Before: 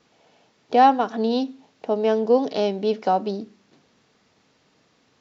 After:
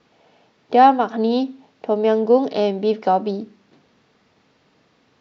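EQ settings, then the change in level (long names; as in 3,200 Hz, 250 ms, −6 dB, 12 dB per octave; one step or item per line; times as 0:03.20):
high-frequency loss of the air 110 metres
+3.5 dB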